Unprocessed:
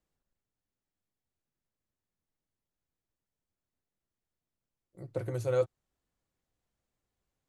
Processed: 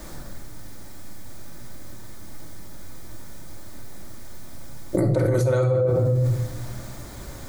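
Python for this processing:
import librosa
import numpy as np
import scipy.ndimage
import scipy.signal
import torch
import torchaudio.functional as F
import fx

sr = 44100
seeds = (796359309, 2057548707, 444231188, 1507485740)

y = fx.peak_eq(x, sr, hz=2800.0, db=-10.5, octaves=0.32)
y = fx.room_shoebox(y, sr, seeds[0], volume_m3=1900.0, walls='furnished', distance_m=2.6)
y = fx.env_flatten(y, sr, amount_pct=100)
y = y * 10.0 ** (4.0 / 20.0)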